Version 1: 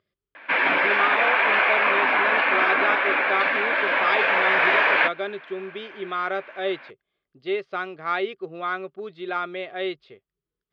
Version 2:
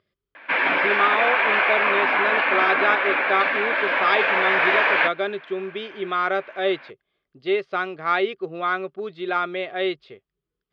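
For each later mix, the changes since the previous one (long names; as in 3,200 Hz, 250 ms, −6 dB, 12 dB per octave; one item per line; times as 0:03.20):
speech +4.0 dB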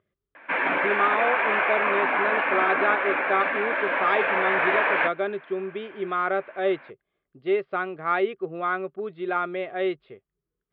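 master: add high-frequency loss of the air 470 metres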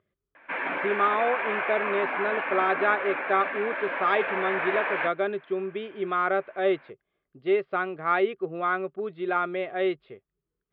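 background −6.0 dB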